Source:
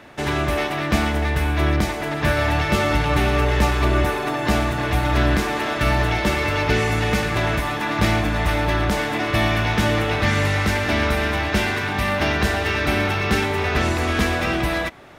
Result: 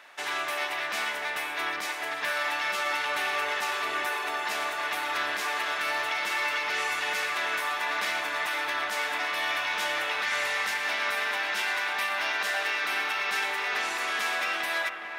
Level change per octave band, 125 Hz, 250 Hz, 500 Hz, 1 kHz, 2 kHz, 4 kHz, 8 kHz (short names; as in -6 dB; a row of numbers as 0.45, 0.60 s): under -40 dB, -25.5 dB, -14.0 dB, -6.5 dB, -3.5 dB, -4.0 dB, -4.5 dB